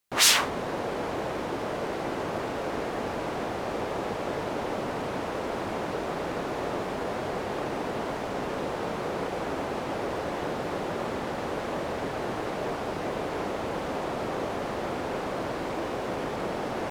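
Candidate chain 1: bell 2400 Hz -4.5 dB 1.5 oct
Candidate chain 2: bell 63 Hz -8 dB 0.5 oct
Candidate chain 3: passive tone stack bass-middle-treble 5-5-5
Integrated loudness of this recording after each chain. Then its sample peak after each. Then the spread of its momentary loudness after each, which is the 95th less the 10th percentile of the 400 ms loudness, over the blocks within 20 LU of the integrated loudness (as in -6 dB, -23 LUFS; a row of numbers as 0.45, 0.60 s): -31.5, -30.5, -42.0 LUFS; -7.0, -5.5, -12.5 dBFS; 1, 1, 0 LU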